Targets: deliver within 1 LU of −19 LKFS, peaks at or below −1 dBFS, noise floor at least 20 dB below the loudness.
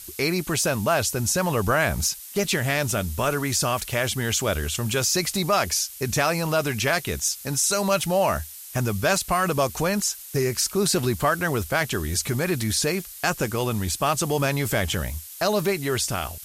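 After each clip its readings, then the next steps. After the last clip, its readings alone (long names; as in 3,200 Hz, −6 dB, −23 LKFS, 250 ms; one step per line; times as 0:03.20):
background noise floor −41 dBFS; target noise floor −44 dBFS; integrated loudness −23.5 LKFS; sample peak −9.0 dBFS; target loudness −19.0 LKFS
→ noise reduction from a noise print 6 dB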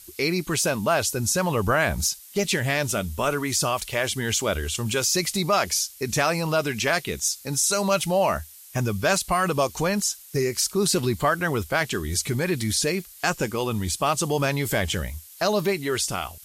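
background noise floor −46 dBFS; integrated loudness −24.0 LKFS; sample peak −8.5 dBFS; target loudness −19.0 LKFS
→ level +5 dB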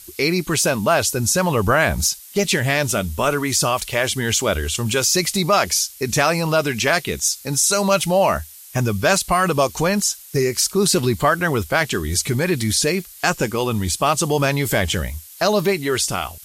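integrated loudness −19.0 LKFS; sample peak −3.5 dBFS; background noise floor −41 dBFS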